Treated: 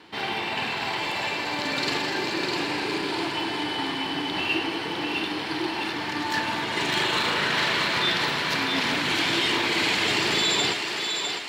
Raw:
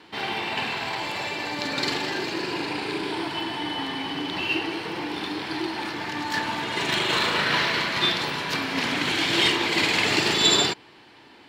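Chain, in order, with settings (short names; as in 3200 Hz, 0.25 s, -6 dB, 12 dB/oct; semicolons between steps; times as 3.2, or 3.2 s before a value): limiter -15 dBFS, peak gain reduction 8 dB; on a send: thinning echo 0.654 s, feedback 52%, high-pass 400 Hz, level -4.5 dB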